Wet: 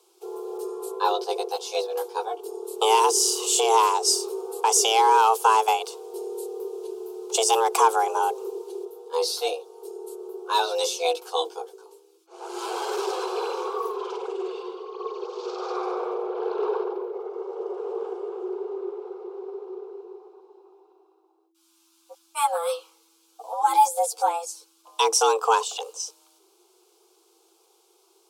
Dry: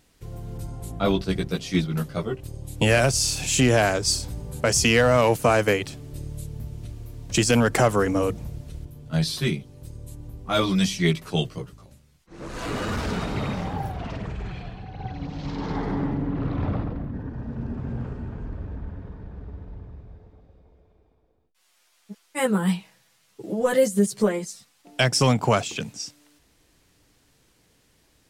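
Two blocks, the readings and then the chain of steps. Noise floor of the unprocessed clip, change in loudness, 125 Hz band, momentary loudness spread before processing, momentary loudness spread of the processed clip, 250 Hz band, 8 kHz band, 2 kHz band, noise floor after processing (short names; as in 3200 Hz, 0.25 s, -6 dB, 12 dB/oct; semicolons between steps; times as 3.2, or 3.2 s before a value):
-64 dBFS, -0.5 dB, under -40 dB, 20 LU, 18 LU, -12.5 dB, +2.5 dB, -7.0 dB, -63 dBFS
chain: fixed phaser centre 640 Hz, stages 4; frequency shift +330 Hz; gain +2.5 dB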